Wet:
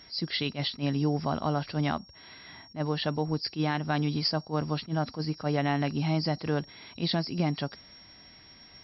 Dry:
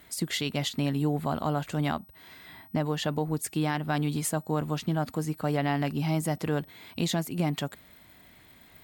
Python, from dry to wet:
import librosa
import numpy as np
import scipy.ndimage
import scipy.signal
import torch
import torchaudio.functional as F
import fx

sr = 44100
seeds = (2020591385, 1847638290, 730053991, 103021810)

y = fx.freq_compress(x, sr, knee_hz=3900.0, ratio=4.0)
y = fx.attack_slew(y, sr, db_per_s=300.0)